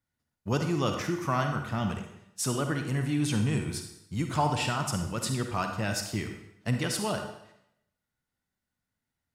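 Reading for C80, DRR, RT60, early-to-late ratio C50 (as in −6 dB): 8.5 dB, 5.0 dB, 0.75 s, 5.5 dB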